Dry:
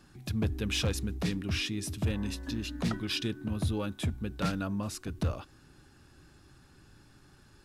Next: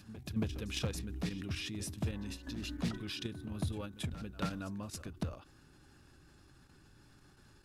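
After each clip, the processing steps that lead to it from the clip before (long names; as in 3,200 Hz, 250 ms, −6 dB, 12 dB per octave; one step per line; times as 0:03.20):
output level in coarse steps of 10 dB
echo ahead of the sound 277 ms −15.5 dB
every ending faded ahead of time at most 140 dB per second
level −1 dB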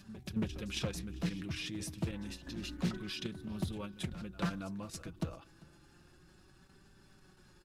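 repeating echo 395 ms, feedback 33%, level −24 dB
flanger 0.29 Hz, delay 5.1 ms, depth 1.1 ms, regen +37%
highs frequency-modulated by the lows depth 0.34 ms
level +4 dB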